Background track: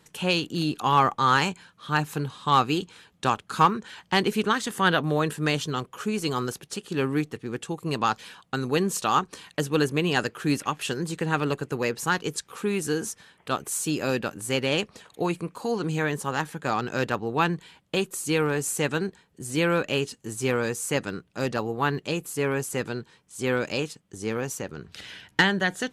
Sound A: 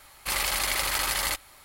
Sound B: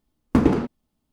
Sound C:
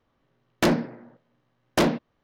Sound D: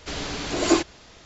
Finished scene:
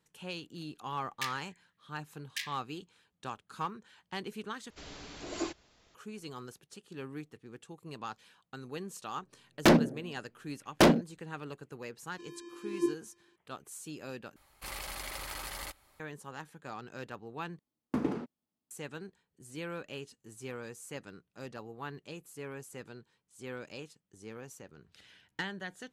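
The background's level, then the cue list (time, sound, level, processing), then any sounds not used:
background track −17 dB
0:00.59: mix in C −8.5 dB + linear-phase brick-wall high-pass 1,600 Hz
0:04.70: overwrite with D −16.5 dB
0:09.03: mix in C + adaptive Wiener filter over 41 samples
0:12.11: mix in D −11 dB + channel vocoder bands 8, square 345 Hz
0:14.36: overwrite with A −12 dB + tilt shelving filter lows +3.5 dB, about 860 Hz
0:17.59: overwrite with B −13.5 dB + high-pass filter 140 Hz

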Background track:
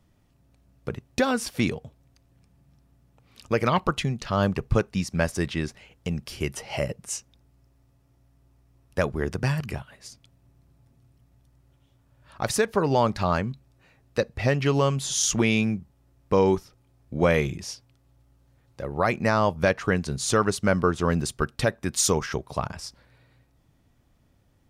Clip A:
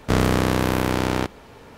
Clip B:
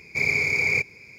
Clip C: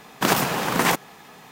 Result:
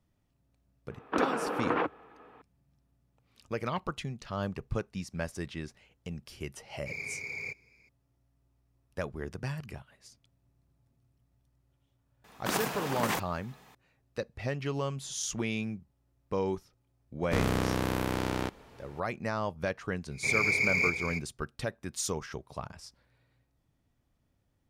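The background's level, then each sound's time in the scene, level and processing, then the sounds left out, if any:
background track −11 dB
0:00.91: mix in C −10.5 dB + loudspeaker in its box 240–2,500 Hz, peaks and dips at 300 Hz +9 dB, 470 Hz +9 dB, 1,300 Hz +6 dB, 2,000 Hz −6 dB
0:06.71: mix in B −16.5 dB
0:12.24: mix in C −11.5 dB
0:17.23: mix in A −9.5 dB
0:20.08: mix in B −5.5 dB, fades 0.10 s + delay that plays each chunk backwards 370 ms, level −7.5 dB

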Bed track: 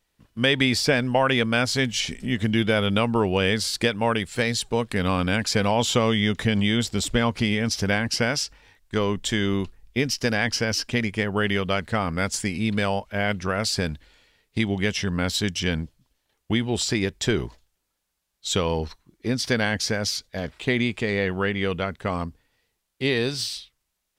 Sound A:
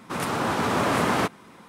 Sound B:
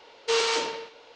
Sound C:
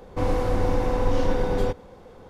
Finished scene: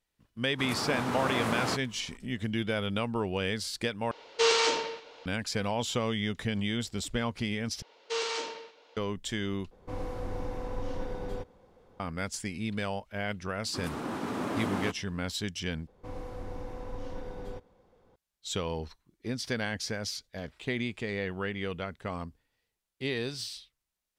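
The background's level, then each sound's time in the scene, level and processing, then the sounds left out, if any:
bed track −9.5 dB
0:00.49: mix in A −8.5 dB
0:04.11: overwrite with B
0:07.82: overwrite with B −8 dB + high-pass filter 180 Hz
0:09.71: overwrite with C −13 dB
0:13.64: mix in A −13.5 dB + parametric band 280 Hz +8.5 dB 1.2 octaves
0:15.87: overwrite with C −17 dB

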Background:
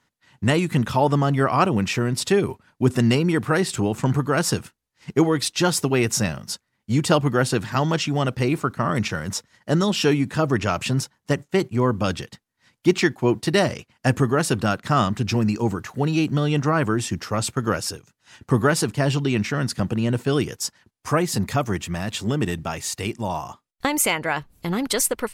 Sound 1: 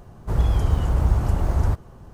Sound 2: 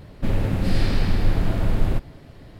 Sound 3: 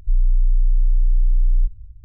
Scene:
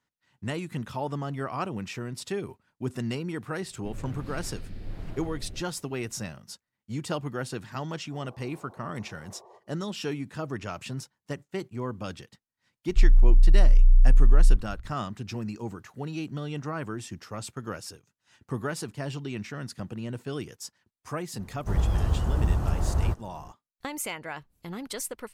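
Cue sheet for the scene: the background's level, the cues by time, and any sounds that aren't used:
background −13 dB
0:03.62: mix in 2 −17 dB + rotating-speaker cabinet horn 1.2 Hz
0:07.84: mix in 1 −18 dB + brick-wall band-pass 340–1,200 Hz
0:12.89: mix in 3
0:21.39: mix in 1 −5 dB + notch filter 2,200 Hz, Q 11

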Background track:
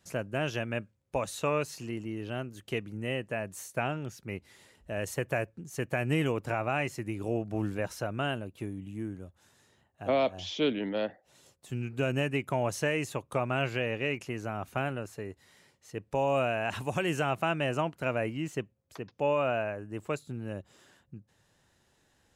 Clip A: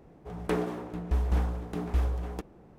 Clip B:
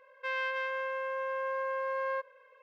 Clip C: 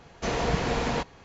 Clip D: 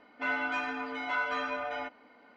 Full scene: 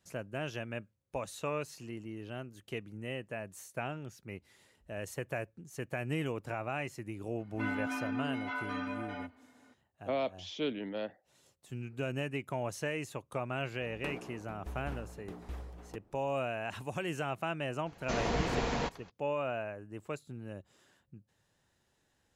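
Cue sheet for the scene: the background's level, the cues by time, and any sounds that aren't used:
background track −6.5 dB
0:07.38: mix in D −7.5 dB + parametric band 260 Hz +13.5 dB 0.24 octaves
0:13.55: mix in A −16.5 dB + harmonic and percussive parts rebalanced percussive +7 dB
0:17.86: mix in C −5.5 dB
not used: B

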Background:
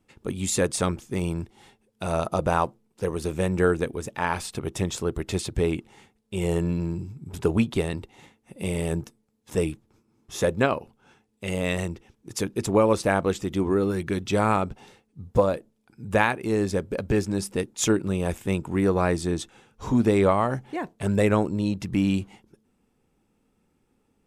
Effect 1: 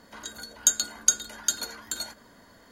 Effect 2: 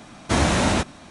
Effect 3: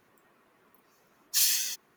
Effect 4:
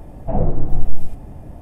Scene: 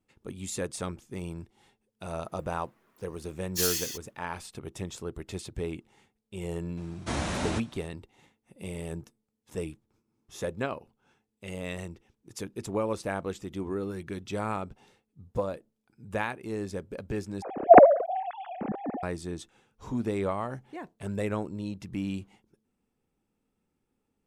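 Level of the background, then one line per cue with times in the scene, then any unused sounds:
background −10 dB
0:02.22: mix in 3 −4 dB, fades 0.10 s
0:06.77: mix in 2 −11.5 dB
0:17.42: overwrite with 4 −9 dB + three sine waves on the formant tracks
not used: 1

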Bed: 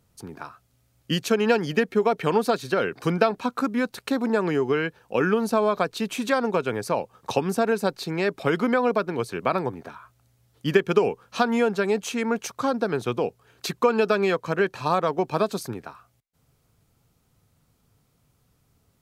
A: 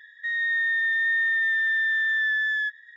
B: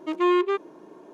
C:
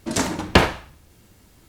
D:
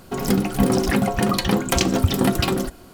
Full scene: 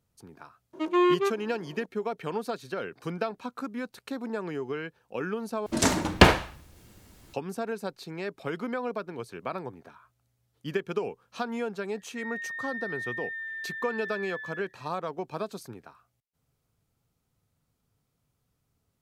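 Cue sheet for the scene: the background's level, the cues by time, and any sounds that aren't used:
bed −10.5 dB
0:00.73: mix in B −1.5 dB
0:05.66: overwrite with C −1 dB
0:11.92: mix in A −1 dB + resonant band-pass 2,200 Hz, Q 10
not used: D

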